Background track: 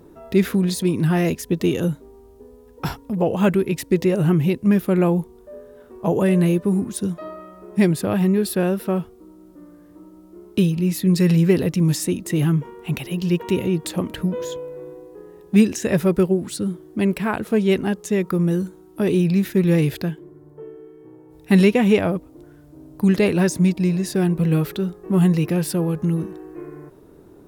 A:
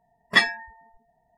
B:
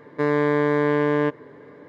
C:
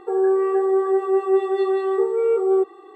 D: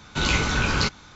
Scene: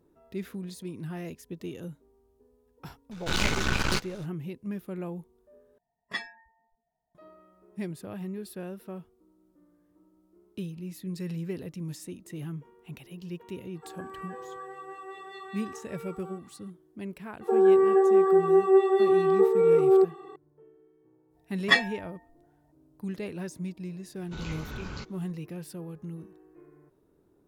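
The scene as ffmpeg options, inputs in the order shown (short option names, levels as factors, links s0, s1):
-filter_complex "[4:a]asplit=2[s0][s1];[1:a]asplit=2[s2][s3];[3:a]asplit=2[s4][s5];[0:a]volume=0.119[s6];[s0]aeval=exprs='max(val(0),0)':c=same[s7];[s4]highpass=1300[s8];[s3]asplit=2[s9][s10];[s10]adelay=6.3,afreqshift=1.6[s11];[s9][s11]amix=inputs=2:normalize=1[s12];[s1]tiltshelf=f=810:g=3.5[s13];[s6]asplit=2[s14][s15];[s14]atrim=end=5.784[s16];[s2]atrim=end=1.37,asetpts=PTS-STARTPTS,volume=0.15[s17];[s15]atrim=start=7.146[s18];[s7]atrim=end=1.15,asetpts=PTS-STARTPTS,volume=0.891,afade=t=in:d=0.004:c=hsin,afade=t=out:st=1.146:d=0.004:c=hsin,adelay=3110[s19];[s8]atrim=end=2.95,asetpts=PTS-STARTPTS,volume=0.447,afade=t=in:d=0.004:c=hsin,afade=t=out:st=2.946:d=0.004:c=hsin,adelay=13750[s20];[s5]atrim=end=2.95,asetpts=PTS-STARTPTS,volume=0.891,afade=t=in:d=0.004:c=hsin,afade=t=out:st=2.946:d=0.004:c=hsin,adelay=17410[s21];[s12]atrim=end=1.37,asetpts=PTS-STARTPTS,volume=0.944,afade=t=in:d=0.004:c=hsin,afade=t=out:st=1.366:d=0.004:c=hsin,adelay=21350[s22];[s13]atrim=end=1.15,asetpts=PTS-STARTPTS,volume=0.133,afade=t=in:d=0.004:c=hsin,afade=t=out:st=1.146:d=0.004:c=hsin,adelay=24160[s23];[s16][s17]acrossfade=d=0.004:c1=hsin:c2=hsin[s24];[s24][s18]acrossfade=d=0.004:c1=hsin:c2=hsin[s25];[s25][s19][s20][s21][s22][s23]amix=inputs=6:normalize=0"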